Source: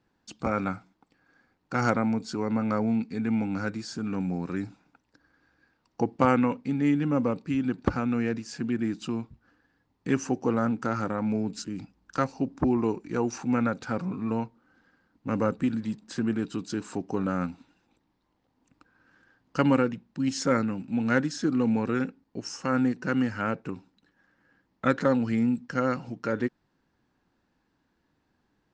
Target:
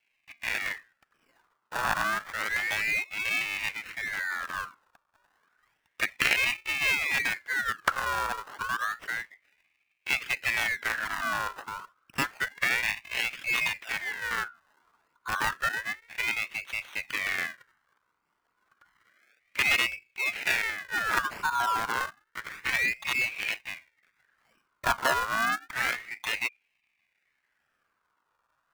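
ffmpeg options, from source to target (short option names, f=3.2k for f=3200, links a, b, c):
-af "acrusher=samples=32:mix=1:aa=0.000001:lfo=1:lforange=32:lforate=0.64,afreqshift=-34,aeval=exprs='val(0)*sin(2*PI*1800*n/s+1800*0.35/0.3*sin(2*PI*0.3*n/s))':c=same"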